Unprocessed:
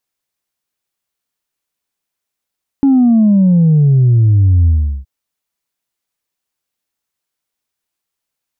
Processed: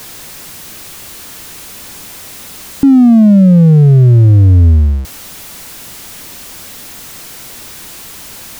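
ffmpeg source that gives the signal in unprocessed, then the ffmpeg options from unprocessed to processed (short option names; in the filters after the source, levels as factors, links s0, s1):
-f lavfi -i "aevalsrc='0.473*clip((2.22-t)/0.38,0,1)*tanh(1.06*sin(2*PI*280*2.22/log(65/280)*(exp(log(65/280)*t/2.22)-1)))/tanh(1.06)':d=2.22:s=44100"
-filter_complex "[0:a]aeval=exprs='val(0)+0.5*0.0596*sgn(val(0))':c=same,acrossover=split=340[s0][s1];[s0]acontrast=53[s2];[s2][s1]amix=inputs=2:normalize=0"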